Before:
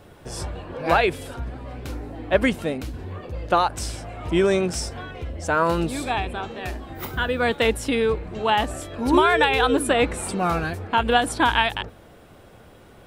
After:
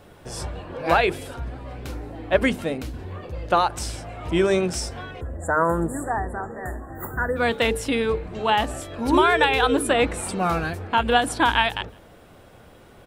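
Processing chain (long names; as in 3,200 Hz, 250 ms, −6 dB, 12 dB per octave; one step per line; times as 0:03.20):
time-frequency box erased 0:05.21–0:07.37, 2,000–6,800 Hz
mains-hum notches 50/100/150/200/250/300/350/400/450 Hz
far-end echo of a speakerphone 160 ms, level −27 dB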